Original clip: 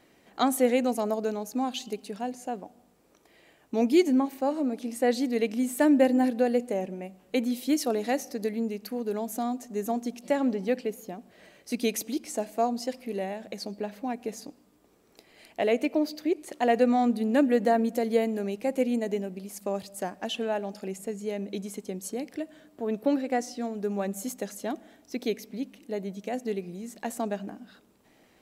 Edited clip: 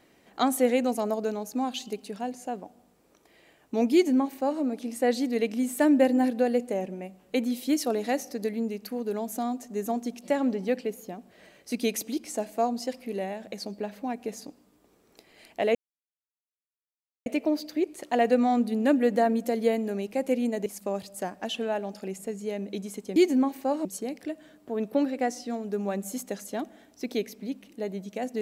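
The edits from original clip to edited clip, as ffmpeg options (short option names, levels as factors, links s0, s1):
-filter_complex "[0:a]asplit=5[s0][s1][s2][s3][s4];[s0]atrim=end=15.75,asetpts=PTS-STARTPTS,afade=t=out:st=15.746:d=0.004:c=hsin,apad=pad_dur=1.51[s5];[s1]atrim=start=15.75:end=19.152,asetpts=PTS-STARTPTS,afade=t=in:d=0.004:c=hsin[s6];[s2]atrim=start=19.458:end=21.962[s7];[s3]atrim=start=3.928:end=4.622[s8];[s4]atrim=start=21.958[s9];[s5][s6]concat=n=2:v=0:a=1[s10];[s10][s7]acrossfade=d=0.004:c1=hsin:c2=hsin[s11];[s11][s8]acrossfade=d=0.004:c1=hsin:c2=hsin[s12];[s12][s9]acrossfade=d=0.004:c1=hsin:c2=hsin"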